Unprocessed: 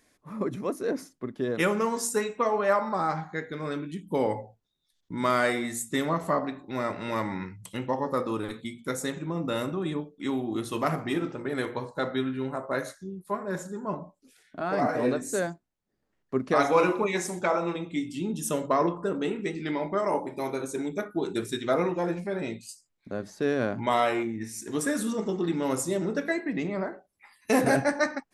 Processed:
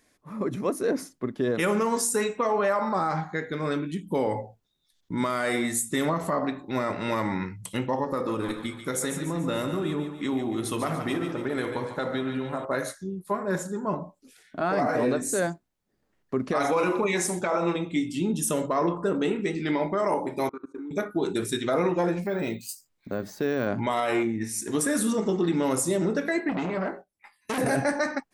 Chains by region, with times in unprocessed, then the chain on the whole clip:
8.04–12.65 compressor 3:1, threshold -30 dBFS + split-band echo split 640 Hz, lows 81 ms, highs 0.144 s, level -8 dB
20.49–20.91 double band-pass 610 Hz, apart 1.9 oct + bell 560 Hz +3.5 dB 1.4 oct + level quantiser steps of 20 dB
22.22–23.67 careless resampling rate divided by 2×, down none, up hold + compressor 2:1, threshold -29 dBFS
26.49–27.58 gate -54 dBFS, range -12 dB + doubler 22 ms -7 dB + core saturation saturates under 2300 Hz
whole clip: dynamic EQ 9800 Hz, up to +6 dB, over -54 dBFS, Q 2.5; limiter -20.5 dBFS; AGC gain up to 4.5 dB

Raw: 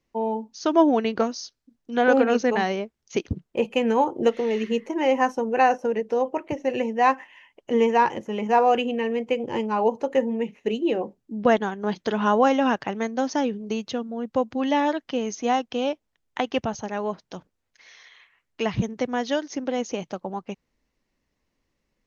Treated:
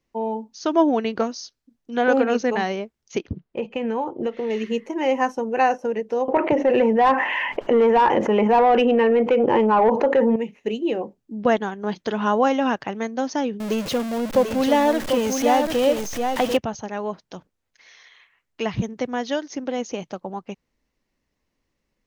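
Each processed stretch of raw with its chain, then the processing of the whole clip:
3.18–4.5 compressor 3:1, threshold -21 dBFS + air absorption 150 m
6.28–10.36 LPF 2400 Hz 6 dB/oct + overdrive pedal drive 16 dB, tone 1200 Hz, clips at -8 dBFS + fast leveller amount 70%
13.6–16.57 zero-crossing step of -26 dBFS + bell 560 Hz +5.5 dB 0.54 oct + echo 0.742 s -5.5 dB
whole clip: dry

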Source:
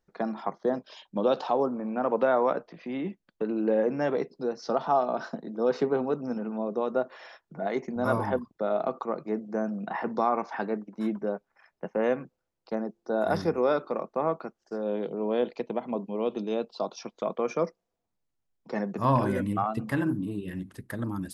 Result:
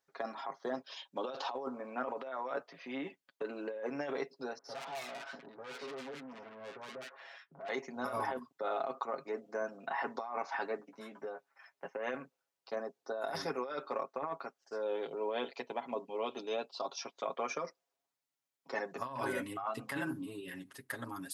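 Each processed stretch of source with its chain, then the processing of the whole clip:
4.58–7.69 tone controls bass +2 dB, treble -11 dB + tube stage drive 37 dB, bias 0.45 + bands offset in time lows, highs 60 ms, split 1200 Hz
10.78–11.85 compressor 5:1, threshold -32 dBFS + doubler 14 ms -7 dB
whole clip: HPF 1100 Hz 6 dB/oct; comb 7.3 ms, depth 75%; negative-ratio compressor -34 dBFS, ratio -1; gain -2.5 dB

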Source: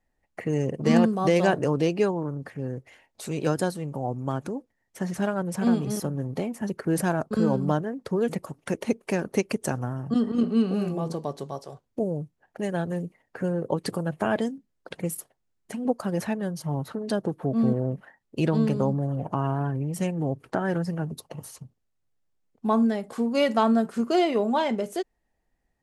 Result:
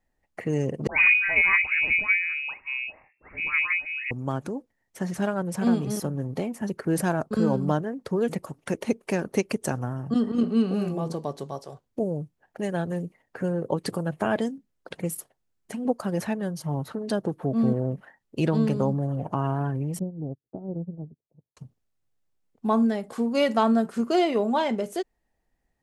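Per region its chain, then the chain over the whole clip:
0.87–4.11 dispersion lows, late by 0.112 s, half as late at 890 Hz + inverted band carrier 2700 Hz
19.99–21.57 Gaussian blur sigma 15 samples + upward expander 2.5:1, over -48 dBFS
whole clip: dry

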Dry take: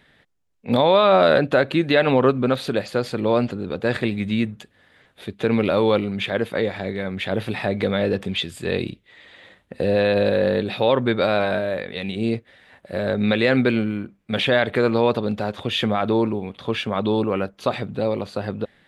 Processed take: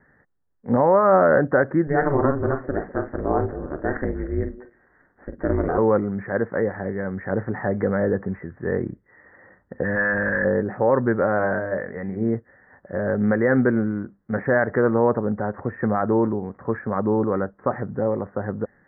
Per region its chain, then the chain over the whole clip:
1.87–5.78 doubler 45 ms -9 dB + ring modulator 140 Hz + delay with a stepping band-pass 0.101 s, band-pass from 190 Hz, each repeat 1.4 oct, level -11.5 dB
9.83–10.45 EQ curve 300 Hz 0 dB, 460 Hz -9 dB, 1800 Hz +14 dB + tube stage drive 11 dB, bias 0.25
11.36–12.36 high shelf 3900 Hz +11 dB + de-hum 202.3 Hz, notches 33
whole clip: steep low-pass 1900 Hz 96 dB/oct; notch 650 Hz, Q 13

